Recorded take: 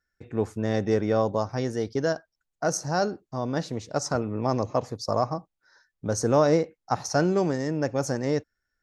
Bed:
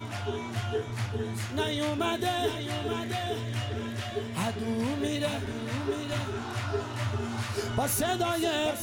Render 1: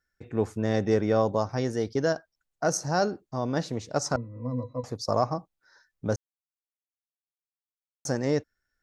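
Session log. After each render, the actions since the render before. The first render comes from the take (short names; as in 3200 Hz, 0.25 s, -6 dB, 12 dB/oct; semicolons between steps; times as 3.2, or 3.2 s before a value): 4.16–4.84 octave resonator B, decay 0.12 s; 6.16–8.05 mute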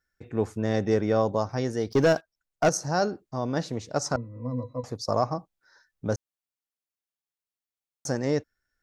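1.91–2.69 sample leveller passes 2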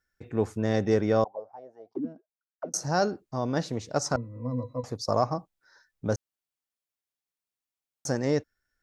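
1.24–2.74 auto-wah 240–1900 Hz, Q 13, down, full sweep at -17.5 dBFS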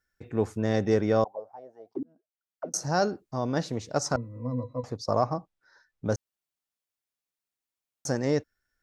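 2.03–2.64 fade in; 4.54–6.05 high shelf 7000 Hz -11.5 dB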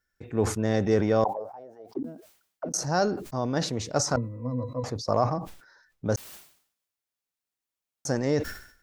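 transient shaper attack +1 dB, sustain +5 dB; sustainer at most 98 dB/s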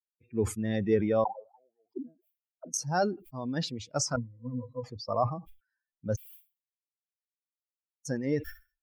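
per-bin expansion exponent 2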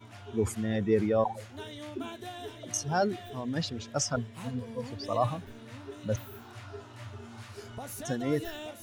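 add bed -13 dB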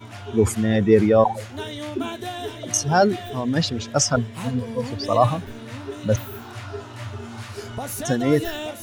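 gain +10.5 dB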